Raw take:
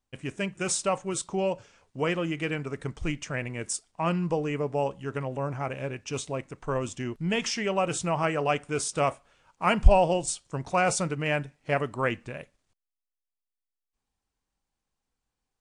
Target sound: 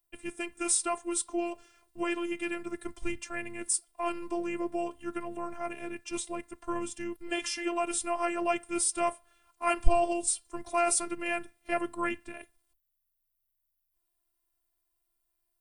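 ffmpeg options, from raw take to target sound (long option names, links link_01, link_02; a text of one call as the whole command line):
ffmpeg -i in.wav -af "afreqshift=-27,aexciter=amount=8.6:drive=4.8:freq=9400,afftfilt=real='hypot(re,im)*cos(PI*b)':imag='0':win_size=512:overlap=0.75" out.wav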